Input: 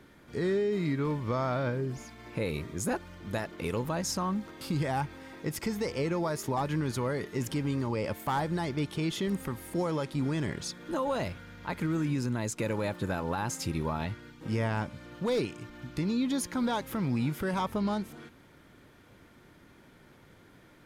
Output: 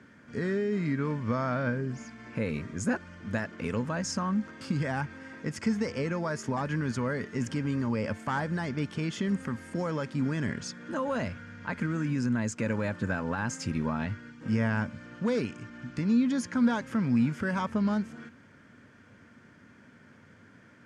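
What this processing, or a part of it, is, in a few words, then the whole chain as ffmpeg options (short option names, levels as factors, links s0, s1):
car door speaker: -af "highpass=96,equalizer=f=98:t=q:w=4:g=6,equalizer=f=230:t=q:w=4:g=8,equalizer=f=350:t=q:w=4:g=-6,equalizer=f=800:t=q:w=4:g=-5,equalizer=f=1600:t=q:w=4:g=7,equalizer=f=3800:t=q:w=4:g=-9,lowpass=f=7800:w=0.5412,lowpass=f=7800:w=1.3066"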